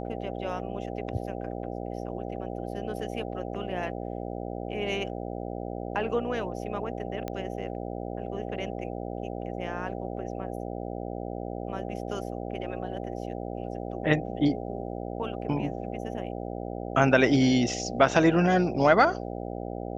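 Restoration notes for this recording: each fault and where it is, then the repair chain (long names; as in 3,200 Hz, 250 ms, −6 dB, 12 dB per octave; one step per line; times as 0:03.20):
mains buzz 60 Hz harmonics 13 −35 dBFS
0:07.28: click −19 dBFS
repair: click removal
hum removal 60 Hz, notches 13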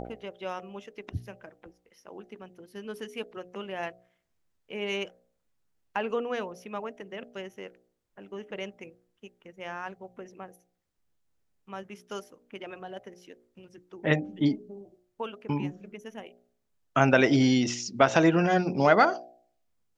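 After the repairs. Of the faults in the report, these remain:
none of them is left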